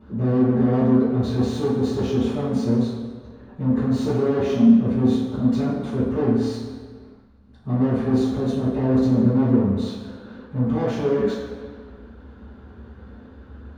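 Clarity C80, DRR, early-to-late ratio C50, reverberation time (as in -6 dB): 2.5 dB, -13.0 dB, -0.5 dB, 1.8 s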